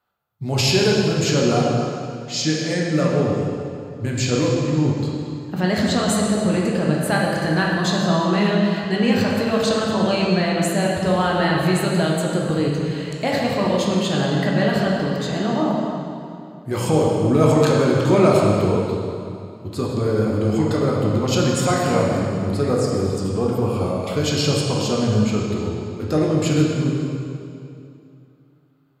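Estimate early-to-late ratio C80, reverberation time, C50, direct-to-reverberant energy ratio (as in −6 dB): 1.0 dB, 2.6 s, −0.5 dB, −3.5 dB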